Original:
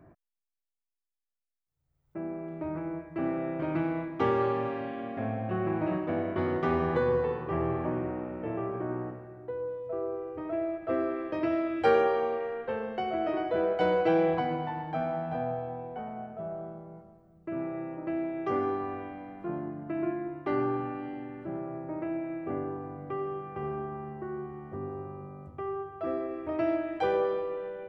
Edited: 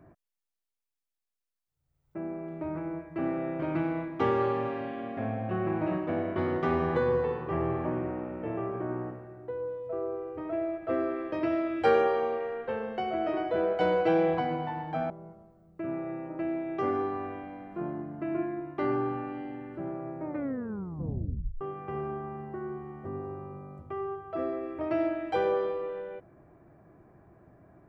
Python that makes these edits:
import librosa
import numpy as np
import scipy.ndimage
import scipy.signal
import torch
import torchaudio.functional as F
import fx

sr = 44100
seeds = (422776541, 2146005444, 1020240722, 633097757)

y = fx.edit(x, sr, fx.cut(start_s=15.1, length_s=1.68),
    fx.tape_stop(start_s=21.92, length_s=1.37), tone=tone)